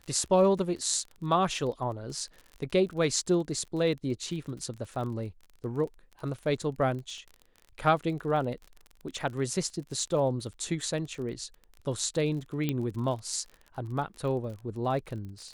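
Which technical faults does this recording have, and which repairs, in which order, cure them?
crackle 33 per s -38 dBFS
12.69 s: pop -16 dBFS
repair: de-click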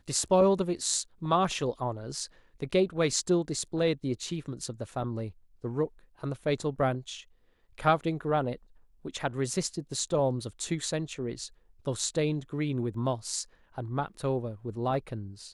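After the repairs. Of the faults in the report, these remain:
nothing left

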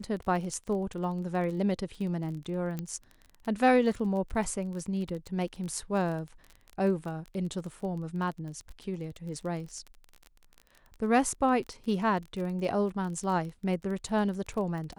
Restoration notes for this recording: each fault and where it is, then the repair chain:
crackle 26 per s -36 dBFS
2.79 s: pop -21 dBFS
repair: de-click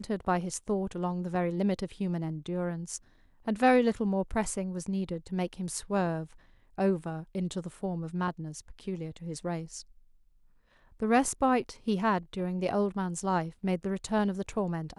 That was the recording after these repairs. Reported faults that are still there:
nothing left

